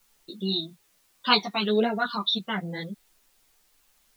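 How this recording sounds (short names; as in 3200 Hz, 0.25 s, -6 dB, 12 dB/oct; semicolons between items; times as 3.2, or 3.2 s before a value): phasing stages 12, 1.2 Hz, lowest notch 500–1100 Hz; a quantiser's noise floor 12-bit, dither triangular; a shimmering, thickened sound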